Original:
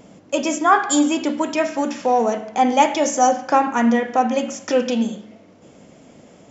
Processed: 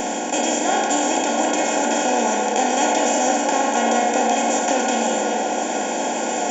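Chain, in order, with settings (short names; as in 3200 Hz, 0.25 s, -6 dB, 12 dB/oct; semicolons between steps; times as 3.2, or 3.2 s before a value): per-bin compression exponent 0.2; Butterworth band-stop 1200 Hz, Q 2.4; high shelf 4000 Hz +6 dB; resonator 360 Hz, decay 0.31 s, harmonics all, mix 80%; on a send: delay with a stepping band-pass 0.34 s, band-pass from 470 Hz, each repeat 0.7 oct, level -1 dB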